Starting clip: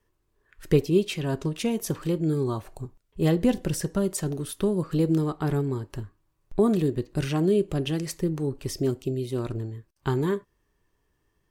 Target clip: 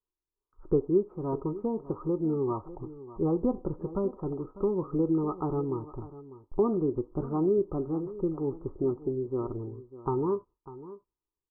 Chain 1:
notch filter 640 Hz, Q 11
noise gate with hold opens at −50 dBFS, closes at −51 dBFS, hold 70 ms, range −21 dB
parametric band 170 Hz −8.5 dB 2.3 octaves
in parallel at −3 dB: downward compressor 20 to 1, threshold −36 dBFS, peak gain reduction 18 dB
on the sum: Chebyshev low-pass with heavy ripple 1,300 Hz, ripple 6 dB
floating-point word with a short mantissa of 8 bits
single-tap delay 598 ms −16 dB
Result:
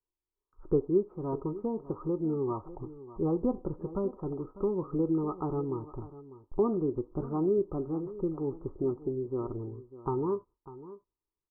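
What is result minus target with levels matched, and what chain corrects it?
downward compressor: peak gain reduction +8.5 dB
notch filter 640 Hz, Q 11
noise gate with hold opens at −50 dBFS, closes at −51 dBFS, hold 70 ms, range −21 dB
parametric band 170 Hz −8.5 dB 2.3 octaves
in parallel at −3 dB: downward compressor 20 to 1, threshold −27 dBFS, peak gain reduction 9.5 dB
on the sum: Chebyshev low-pass with heavy ripple 1,300 Hz, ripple 6 dB
floating-point word with a short mantissa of 8 bits
single-tap delay 598 ms −16 dB

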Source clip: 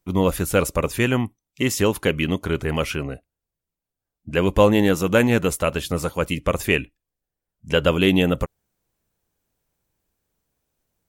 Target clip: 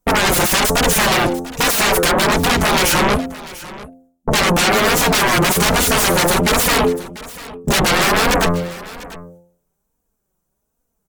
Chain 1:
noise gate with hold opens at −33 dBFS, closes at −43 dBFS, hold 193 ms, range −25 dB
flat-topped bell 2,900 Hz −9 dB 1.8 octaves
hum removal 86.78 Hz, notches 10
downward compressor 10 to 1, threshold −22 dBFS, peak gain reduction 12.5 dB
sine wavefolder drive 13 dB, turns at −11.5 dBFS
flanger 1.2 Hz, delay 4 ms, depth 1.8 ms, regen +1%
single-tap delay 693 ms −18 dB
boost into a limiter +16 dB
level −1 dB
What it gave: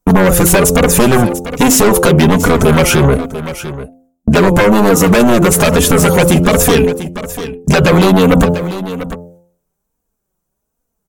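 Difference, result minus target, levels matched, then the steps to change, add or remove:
sine wavefolder: distortion −23 dB
change: sine wavefolder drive 13 dB, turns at −23.5 dBFS

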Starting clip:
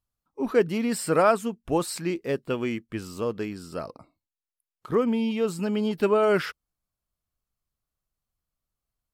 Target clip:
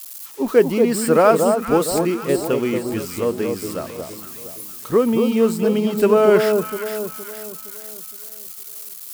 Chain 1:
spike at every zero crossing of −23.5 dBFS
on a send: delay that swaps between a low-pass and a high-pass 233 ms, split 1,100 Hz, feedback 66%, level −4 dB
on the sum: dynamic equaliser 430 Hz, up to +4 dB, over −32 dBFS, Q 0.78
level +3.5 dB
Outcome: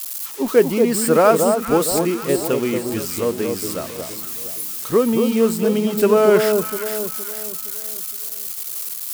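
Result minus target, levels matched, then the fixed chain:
spike at every zero crossing: distortion +7 dB
spike at every zero crossing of −30.5 dBFS
on a send: delay that swaps between a low-pass and a high-pass 233 ms, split 1,100 Hz, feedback 66%, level −4 dB
on the sum: dynamic equaliser 430 Hz, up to +4 dB, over −32 dBFS, Q 0.78
level +3.5 dB

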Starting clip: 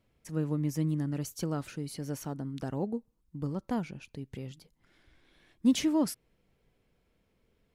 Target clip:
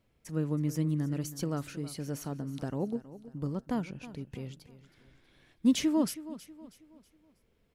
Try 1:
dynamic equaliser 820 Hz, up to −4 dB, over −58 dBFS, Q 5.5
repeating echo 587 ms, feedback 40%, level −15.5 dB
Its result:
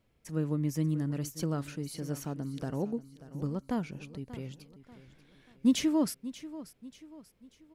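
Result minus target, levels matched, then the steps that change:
echo 266 ms late
change: repeating echo 321 ms, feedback 40%, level −15.5 dB

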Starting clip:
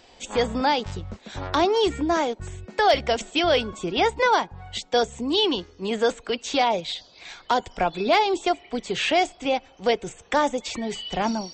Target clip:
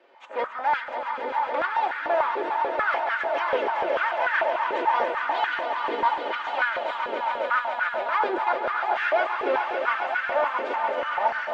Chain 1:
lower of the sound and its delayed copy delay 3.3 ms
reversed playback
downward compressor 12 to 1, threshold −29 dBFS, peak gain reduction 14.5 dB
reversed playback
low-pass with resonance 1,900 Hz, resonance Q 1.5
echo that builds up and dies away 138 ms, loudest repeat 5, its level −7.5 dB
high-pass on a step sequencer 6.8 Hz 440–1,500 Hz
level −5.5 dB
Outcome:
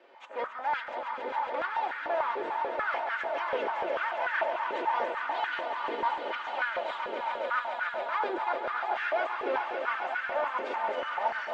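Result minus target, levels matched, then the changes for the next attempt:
downward compressor: peak gain reduction +7 dB
change: downward compressor 12 to 1, threshold −21.5 dBFS, peak gain reduction 8 dB

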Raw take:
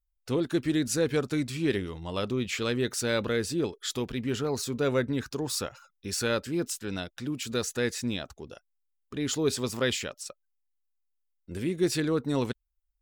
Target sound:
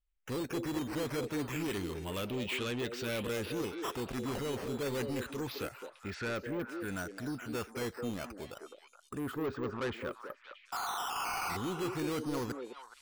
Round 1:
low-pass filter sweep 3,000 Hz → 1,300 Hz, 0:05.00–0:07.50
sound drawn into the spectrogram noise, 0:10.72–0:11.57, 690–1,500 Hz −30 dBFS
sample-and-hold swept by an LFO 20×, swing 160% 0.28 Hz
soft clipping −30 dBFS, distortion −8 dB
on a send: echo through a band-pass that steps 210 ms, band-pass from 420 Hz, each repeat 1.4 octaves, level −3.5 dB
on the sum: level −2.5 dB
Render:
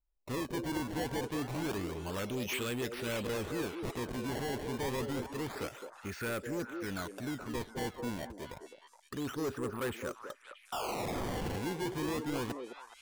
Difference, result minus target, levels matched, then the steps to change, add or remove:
sample-and-hold swept by an LFO: distortion +8 dB
change: sample-and-hold swept by an LFO 7×, swing 160% 0.28 Hz

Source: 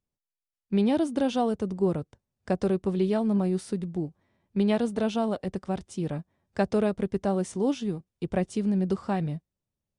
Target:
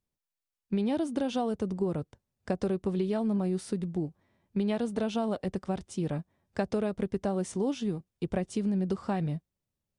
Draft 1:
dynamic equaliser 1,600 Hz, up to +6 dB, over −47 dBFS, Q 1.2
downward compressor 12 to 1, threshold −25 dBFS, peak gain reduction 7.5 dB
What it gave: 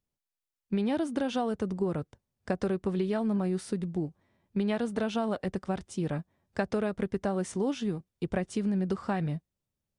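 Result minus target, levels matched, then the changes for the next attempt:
2,000 Hz band +4.5 dB
remove: dynamic equaliser 1,600 Hz, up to +6 dB, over −47 dBFS, Q 1.2

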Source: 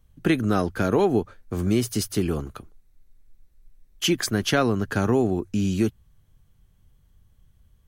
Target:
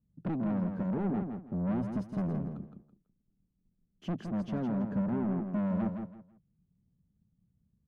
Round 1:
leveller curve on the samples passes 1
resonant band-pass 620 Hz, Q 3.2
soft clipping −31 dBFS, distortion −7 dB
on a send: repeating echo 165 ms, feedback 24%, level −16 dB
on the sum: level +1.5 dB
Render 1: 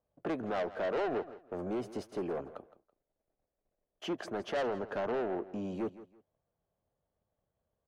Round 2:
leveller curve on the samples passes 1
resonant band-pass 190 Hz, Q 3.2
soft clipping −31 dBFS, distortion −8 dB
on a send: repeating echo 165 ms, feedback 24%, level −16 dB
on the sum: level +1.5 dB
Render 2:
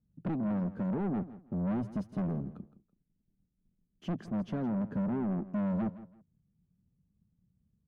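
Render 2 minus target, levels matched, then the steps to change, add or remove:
echo-to-direct −9.5 dB
change: repeating echo 165 ms, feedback 24%, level −6.5 dB

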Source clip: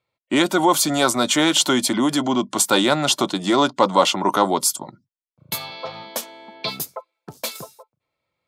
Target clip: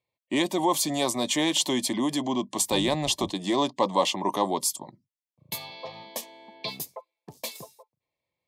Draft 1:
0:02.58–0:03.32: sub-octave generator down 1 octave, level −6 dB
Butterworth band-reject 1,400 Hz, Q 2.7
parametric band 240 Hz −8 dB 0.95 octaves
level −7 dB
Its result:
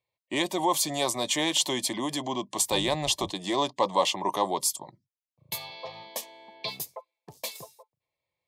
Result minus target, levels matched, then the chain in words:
250 Hz band −4.0 dB
0:02.58–0:03.32: sub-octave generator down 1 octave, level −6 dB
Butterworth band-reject 1,400 Hz, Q 2.7
level −7 dB

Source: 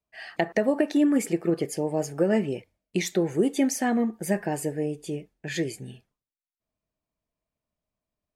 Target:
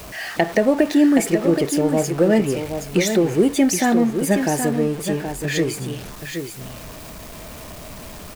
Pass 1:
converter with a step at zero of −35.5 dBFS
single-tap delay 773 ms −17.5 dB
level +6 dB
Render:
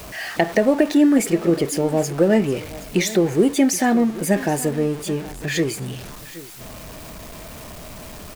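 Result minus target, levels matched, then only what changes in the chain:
echo-to-direct −10 dB
change: single-tap delay 773 ms −7.5 dB

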